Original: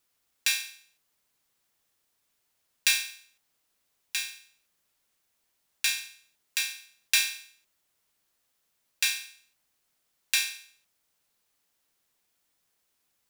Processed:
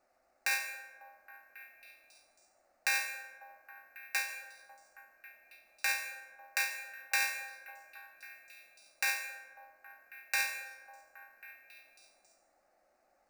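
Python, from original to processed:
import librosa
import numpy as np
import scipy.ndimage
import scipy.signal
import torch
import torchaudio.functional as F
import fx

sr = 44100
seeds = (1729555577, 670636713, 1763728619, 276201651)

p1 = fx.band_shelf(x, sr, hz=660.0, db=13.5, octaves=1.7)
p2 = fx.over_compress(p1, sr, threshold_db=-27.0, ratio=-0.5)
p3 = p1 + (p2 * librosa.db_to_amplitude(-1.0))
p4 = scipy.ndimage.gaussian_filter1d(p3, 1.6, mode='constant')
p5 = fx.fixed_phaser(p4, sr, hz=660.0, stages=8)
p6 = p5 + fx.echo_stepped(p5, sr, ms=273, hz=430.0, octaves=0.7, feedback_pct=70, wet_db=-9, dry=0)
p7 = np.repeat(p6[::3], 3)[:len(p6)]
y = fx.rev_plate(p7, sr, seeds[0], rt60_s=1.5, hf_ratio=0.35, predelay_ms=110, drr_db=10.5)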